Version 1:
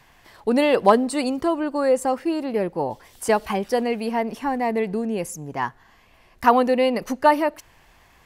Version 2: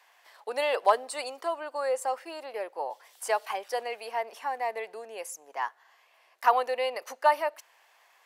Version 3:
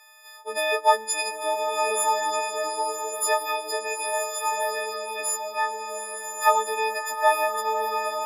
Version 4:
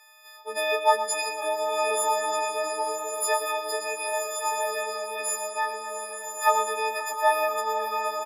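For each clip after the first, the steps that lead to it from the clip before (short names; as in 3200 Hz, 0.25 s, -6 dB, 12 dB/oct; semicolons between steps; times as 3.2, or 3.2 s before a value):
HPF 550 Hz 24 dB/oct; gain -5.5 dB
frequency quantiser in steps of 6 st; bloom reverb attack 1.32 s, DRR 2.5 dB
feedback echo 0.119 s, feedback 56%, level -10 dB; warbling echo 0.517 s, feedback 33%, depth 62 cents, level -20 dB; gain -2 dB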